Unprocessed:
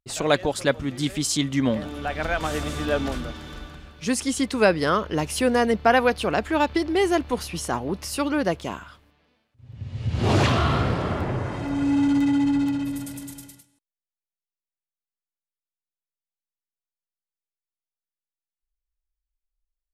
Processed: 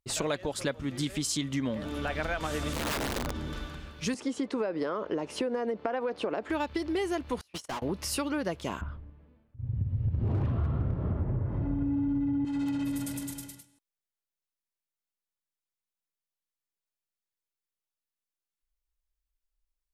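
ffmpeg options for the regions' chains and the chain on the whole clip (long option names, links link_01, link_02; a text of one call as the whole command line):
ffmpeg -i in.wav -filter_complex "[0:a]asettb=1/sr,asplit=3[link_01][link_02][link_03];[link_01]atrim=end=2.734[link_04];[link_02]atrim=start=2.73:end=3.53,asetpts=PTS-STARTPTS,afade=type=in:duration=0.004:curve=qsin,afade=type=out:start_time=0.796:duration=0.004:curve=qsin,tiltshelf=frequency=800:gain=5,acompressor=threshold=-30dB:ratio=2:attack=3.2:release=140:knee=1:detection=peak,aeval=exprs='(mod(16.8*val(0)+1,2)-1)/16.8':channel_layout=same[link_05];[link_03]atrim=start=3.526[link_06];[link_04][link_05]acrossfade=duration=0.004:curve1=hsin:curve2=qsin[link_07];[link_07][link_06]acrossfade=duration=0.004:curve1=qsin:curve2=hsin,asettb=1/sr,asplit=3[link_08][link_09][link_10];[link_08]atrim=end=4.144[link_11];[link_09]atrim=start=4.14:end=6.5,asetpts=PTS-STARTPTS,afade=type=in:duration=0.004:curve=qsin,afade=type=out:start_time=2.356:duration=0.004:curve=qsin,highpass=390,lowpass=7500,tiltshelf=frequency=1200:gain=9.5,acompressor=threshold=-19dB:ratio=4:attack=3.2:release=140:knee=1:detection=peak[link_12];[link_10]atrim=start=6.496[link_13];[link_11][link_12]acrossfade=duration=0.004:curve1=hsin:curve2=qsin[link_14];[link_14][link_13]acrossfade=duration=0.004:curve1=qsin:curve2=hsin,asettb=1/sr,asplit=3[link_15][link_16][link_17];[link_15]atrim=end=7.414[link_18];[link_16]atrim=start=7.41:end=7.82,asetpts=PTS-STARTPTS,afade=type=in:duration=0.004:curve=qsin,afade=type=out:start_time=0.406:duration=0.004:curve=qsin,agate=range=-55dB:threshold=-27dB:ratio=16:release=100:detection=peak,acompressor=threshold=-38dB:ratio=6:attack=3.2:release=140:knee=1:detection=peak,asplit=2[link_19][link_20];[link_20]highpass=frequency=720:poles=1,volume=33dB,asoftclip=type=tanh:threshold=-28dB[link_21];[link_19][link_21]amix=inputs=2:normalize=0,lowpass=frequency=6600:poles=1,volume=-6dB[link_22];[link_17]atrim=start=7.816[link_23];[link_18][link_22]acrossfade=duration=0.004:curve1=hsin:curve2=qsin[link_24];[link_24][link_23]acrossfade=duration=0.004:curve1=qsin:curve2=hsin,asettb=1/sr,asplit=3[link_25][link_26][link_27];[link_25]atrim=end=8.814[link_28];[link_26]atrim=start=8.81:end=12.45,asetpts=PTS-STARTPTS,afade=type=in:duration=0.004:curve=qsin,afade=type=out:start_time=3.636:duration=0.004:curve=qsin,lowpass=frequency=1100:poles=1,aemphasis=mode=reproduction:type=riaa,aeval=exprs='0.631*(abs(mod(val(0)/0.631+3,4)-2)-1)':channel_layout=same[link_29];[link_27]atrim=start=12.446[link_30];[link_28][link_29]acrossfade=duration=0.004:curve1=hsin:curve2=qsin[link_31];[link_31][link_30]acrossfade=duration=0.004:curve1=qsin:curve2=hsin,bandreject=frequency=740:width=17,acompressor=threshold=-28dB:ratio=6" out.wav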